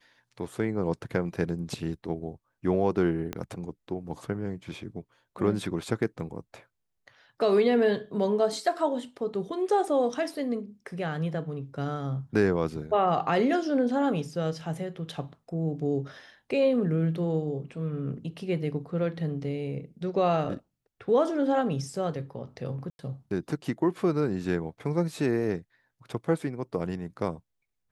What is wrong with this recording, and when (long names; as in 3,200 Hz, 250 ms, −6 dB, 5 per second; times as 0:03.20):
0:03.33: click −18 dBFS
0:22.90–0:22.99: drop-out 91 ms